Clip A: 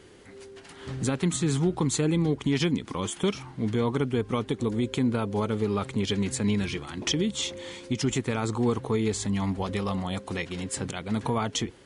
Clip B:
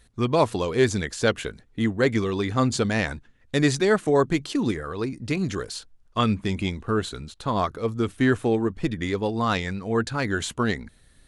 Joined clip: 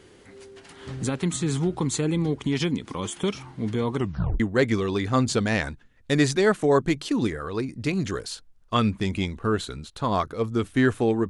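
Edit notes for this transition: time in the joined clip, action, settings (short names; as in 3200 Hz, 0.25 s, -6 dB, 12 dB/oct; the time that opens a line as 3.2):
clip A
3.97 tape stop 0.43 s
4.4 switch to clip B from 1.84 s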